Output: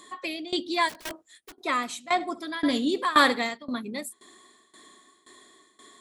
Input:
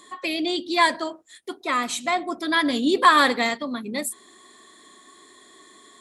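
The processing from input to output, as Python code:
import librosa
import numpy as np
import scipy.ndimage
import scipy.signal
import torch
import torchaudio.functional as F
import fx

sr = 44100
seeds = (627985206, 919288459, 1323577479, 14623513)

y = fx.overflow_wrap(x, sr, gain_db=27.5, at=(0.88, 1.52), fade=0.02)
y = fx.room_flutter(y, sr, wall_m=11.7, rt60_s=0.25, at=(2.19, 3.45), fade=0.02)
y = fx.tremolo_shape(y, sr, shape='saw_down', hz=1.9, depth_pct=90)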